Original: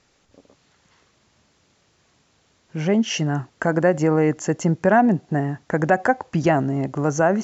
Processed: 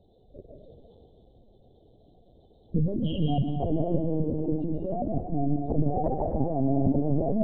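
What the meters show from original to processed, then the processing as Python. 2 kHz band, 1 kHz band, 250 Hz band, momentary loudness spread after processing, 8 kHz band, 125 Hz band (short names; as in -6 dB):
under -35 dB, -11.0 dB, -5.5 dB, 5 LU, n/a, -3.5 dB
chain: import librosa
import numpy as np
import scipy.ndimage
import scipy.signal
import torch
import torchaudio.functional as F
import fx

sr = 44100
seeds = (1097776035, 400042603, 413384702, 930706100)

p1 = fx.spec_gate(x, sr, threshold_db=-15, keep='strong')
p2 = scipy.signal.sosfilt(scipy.signal.cheby2(4, 50, [1200.0, 2500.0], 'bandstop', fs=sr, output='sos'), p1)
p3 = fx.over_compress(p2, sr, threshold_db=-27.0, ratio=-1.0)
p4 = p3 + fx.echo_thinned(p3, sr, ms=123, feedback_pct=60, hz=870.0, wet_db=-11.0, dry=0)
p5 = fx.rev_freeverb(p4, sr, rt60_s=1.8, hf_ratio=0.7, predelay_ms=115, drr_db=1.5)
y = fx.lpc_vocoder(p5, sr, seeds[0], excitation='pitch_kept', order=10)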